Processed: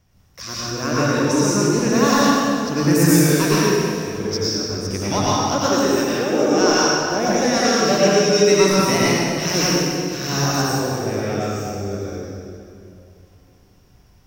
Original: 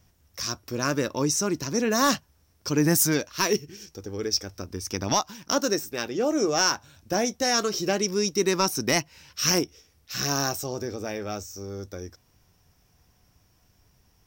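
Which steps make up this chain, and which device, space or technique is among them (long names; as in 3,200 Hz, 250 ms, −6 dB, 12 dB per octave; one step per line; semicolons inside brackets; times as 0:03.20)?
0:07.78–0:08.59: comb filter 6.8 ms, depth 93%
swimming-pool hall (convolution reverb RT60 2.5 s, pre-delay 89 ms, DRR −8 dB; high-shelf EQ 5,700 Hz −7 dB)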